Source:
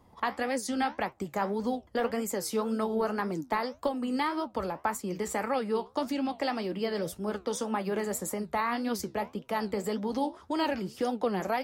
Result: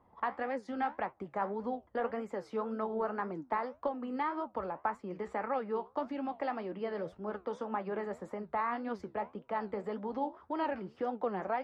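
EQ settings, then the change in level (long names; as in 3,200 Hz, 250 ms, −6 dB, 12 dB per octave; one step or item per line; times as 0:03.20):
low-pass filter 1,400 Hz 12 dB per octave
low-shelf EQ 470 Hz −10 dB
0.0 dB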